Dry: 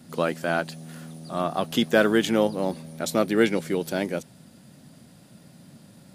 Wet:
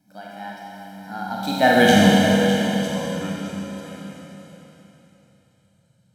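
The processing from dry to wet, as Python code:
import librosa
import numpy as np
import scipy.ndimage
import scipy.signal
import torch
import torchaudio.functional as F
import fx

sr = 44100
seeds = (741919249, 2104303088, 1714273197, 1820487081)

p1 = fx.doppler_pass(x, sr, speed_mps=59, closest_m=8.4, pass_at_s=1.86)
p2 = fx.low_shelf(p1, sr, hz=95.0, db=5.5)
p3 = p2 + 0.75 * np.pad(p2, (int(1.3 * sr / 1000.0), 0))[:len(p2)]
p4 = fx.rev_schroeder(p3, sr, rt60_s=3.3, comb_ms=31, drr_db=-2.5)
p5 = fx.hpss(p4, sr, part='harmonic', gain_db=9)
p6 = p5 + fx.echo_single(p5, sr, ms=614, db=-11.5, dry=0)
y = p6 * 10.0 ** (-1.0 / 20.0)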